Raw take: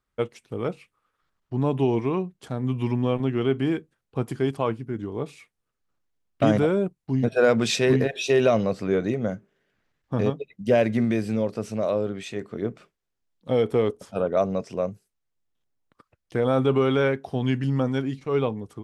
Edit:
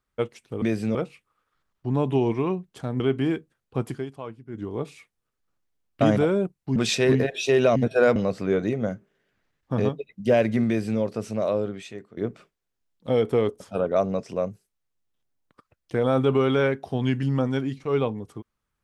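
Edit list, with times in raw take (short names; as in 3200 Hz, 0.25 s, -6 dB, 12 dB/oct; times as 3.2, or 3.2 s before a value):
2.67–3.41 cut
4.3–5.05 dip -11.5 dB, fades 0.17 s
7.17–7.57 move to 8.57
11.08–11.41 copy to 0.62
12.01–12.58 fade out, to -17 dB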